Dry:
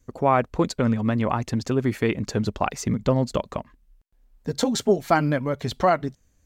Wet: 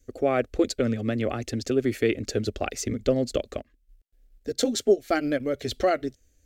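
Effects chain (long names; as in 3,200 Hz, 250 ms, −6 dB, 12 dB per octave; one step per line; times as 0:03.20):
0:03.57–0:05.40: transient designer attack −1 dB, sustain −8 dB
phaser with its sweep stopped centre 400 Hz, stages 4
level +1.5 dB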